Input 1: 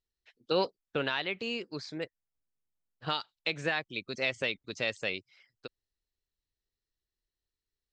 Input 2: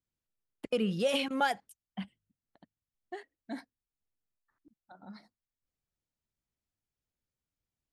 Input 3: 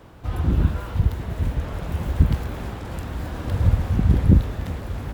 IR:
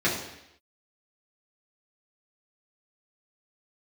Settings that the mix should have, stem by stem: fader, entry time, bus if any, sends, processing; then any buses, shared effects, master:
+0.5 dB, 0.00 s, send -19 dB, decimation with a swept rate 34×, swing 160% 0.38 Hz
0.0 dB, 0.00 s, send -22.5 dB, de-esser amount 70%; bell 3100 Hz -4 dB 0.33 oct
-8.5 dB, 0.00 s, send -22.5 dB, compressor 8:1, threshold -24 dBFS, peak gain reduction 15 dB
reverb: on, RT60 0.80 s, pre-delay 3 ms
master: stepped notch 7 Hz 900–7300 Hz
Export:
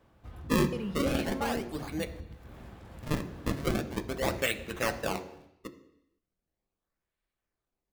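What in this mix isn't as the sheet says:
stem 2 0.0 dB -> -7.5 dB; stem 3 -8.5 dB -> -17.0 dB; master: missing stepped notch 7 Hz 900–7300 Hz

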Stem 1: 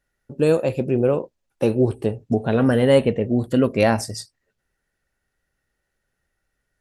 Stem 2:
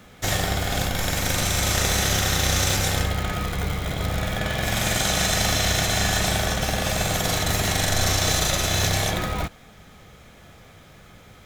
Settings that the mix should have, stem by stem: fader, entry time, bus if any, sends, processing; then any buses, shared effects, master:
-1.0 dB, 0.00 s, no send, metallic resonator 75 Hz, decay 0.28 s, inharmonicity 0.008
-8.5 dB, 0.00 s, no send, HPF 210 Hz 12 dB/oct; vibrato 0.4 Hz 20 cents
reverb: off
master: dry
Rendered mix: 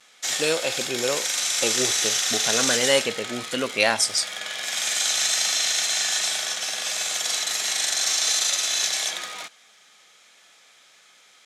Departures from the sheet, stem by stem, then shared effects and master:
stem 1: missing metallic resonator 75 Hz, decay 0.28 s, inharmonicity 0.008; master: extra weighting filter ITU-R 468

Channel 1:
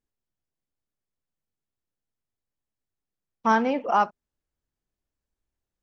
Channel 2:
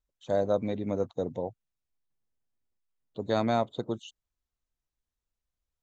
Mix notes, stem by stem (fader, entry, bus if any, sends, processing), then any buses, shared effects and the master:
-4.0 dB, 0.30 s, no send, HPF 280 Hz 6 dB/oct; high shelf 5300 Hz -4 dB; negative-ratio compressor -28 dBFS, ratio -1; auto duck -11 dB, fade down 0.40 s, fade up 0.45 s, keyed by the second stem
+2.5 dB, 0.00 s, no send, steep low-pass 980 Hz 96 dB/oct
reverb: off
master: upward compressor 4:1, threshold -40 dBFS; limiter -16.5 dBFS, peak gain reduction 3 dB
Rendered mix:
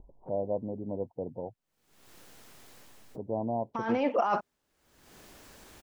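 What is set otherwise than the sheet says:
stem 1 -4.0 dB -> +8.0 dB; stem 2 +2.5 dB -> -5.0 dB

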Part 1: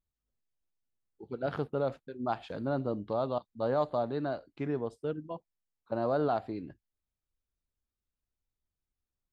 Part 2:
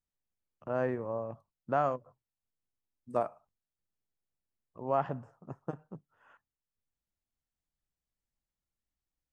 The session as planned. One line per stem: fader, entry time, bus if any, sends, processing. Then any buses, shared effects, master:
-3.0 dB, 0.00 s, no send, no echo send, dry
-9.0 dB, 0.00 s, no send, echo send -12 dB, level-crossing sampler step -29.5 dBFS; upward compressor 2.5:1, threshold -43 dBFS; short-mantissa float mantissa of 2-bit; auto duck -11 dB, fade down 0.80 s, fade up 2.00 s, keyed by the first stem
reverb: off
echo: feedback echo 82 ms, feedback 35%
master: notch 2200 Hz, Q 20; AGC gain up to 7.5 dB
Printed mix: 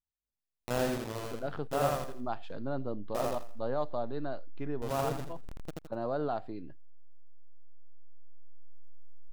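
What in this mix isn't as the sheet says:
stem 1 -3.0 dB -> -11.5 dB; stem 2 -9.0 dB -> -0.5 dB

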